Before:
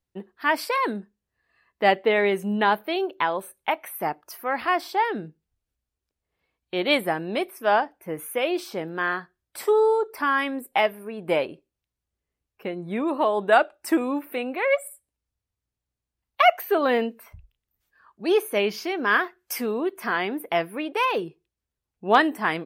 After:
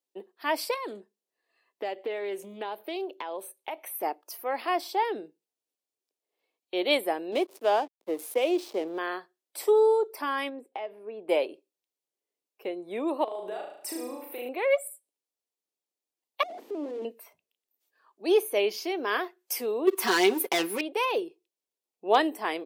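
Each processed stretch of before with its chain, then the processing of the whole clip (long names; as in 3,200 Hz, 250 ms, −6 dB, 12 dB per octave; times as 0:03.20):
0:00.74–0:04.03: downward compressor 4 to 1, threshold −28 dBFS + highs frequency-modulated by the lows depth 0.19 ms
0:07.32–0:08.98: dynamic equaliser 280 Hz, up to +4 dB, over −40 dBFS, Q 1.2 + slack as between gear wheels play −34.5 dBFS + multiband upward and downward compressor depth 40%
0:10.49–0:11.29: head-to-tape spacing loss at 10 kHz 25 dB + downward compressor 12 to 1, threshold −28 dBFS
0:13.24–0:14.49: downward compressor 16 to 1, threshold −31 dBFS + flutter between parallel walls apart 6.3 metres, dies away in 0.68 s
0:16.43–0:17.05: sign of each sample alone + resonant band-pass 270 Hz, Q 3
0:19.87–0:20.81: leveller curve on the samples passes 3 + parametric band 600 Hz −13 dB 0.39 octaves + comb filter 5.3 ms, depth 72%
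whole clip: high-pass filter 330 Hz 24 dB per octave; parametric band 1,500 Hz −11 dB 1.2 octaves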